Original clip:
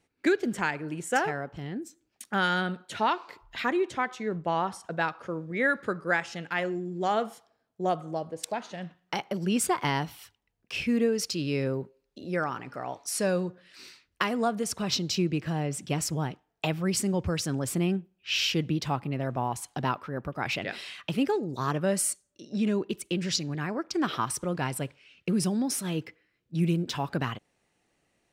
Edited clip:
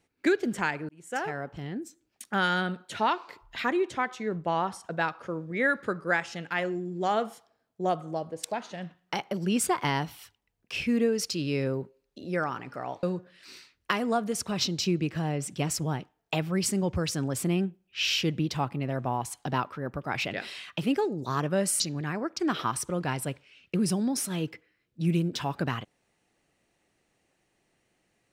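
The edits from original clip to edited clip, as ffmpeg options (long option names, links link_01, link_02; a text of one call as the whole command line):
ffmpeg -i in.wav -filter_complex "[0:a]asplit=4[link_01][link_02][link_03][link_04];[link_01]atrim=end=0.89,asetpts=PTS-STARTPTS,afade=type=out:start_time=0.886:duration=0.004:curve=hsin[link_05];[link_02]atrim=start=0.89:end=13.032,asetpts=PTS-STARTPTS,afade=type=in:duration=0.57[link_06];[link_03]atrim=start=13.338:end=22.112[link_07];[link_04]atrim=start=23.338[link_08];[link_05][link_06]concat=n=2:v=0:a=1[link_09];[link_09][link_07]acrossfade=duration=0.004:curve1=hsin:curve2=hsin[link_10];[link_10][link_08]acrossfade=duration=0.004:curve1=hsin:curve2=hsin" out.wav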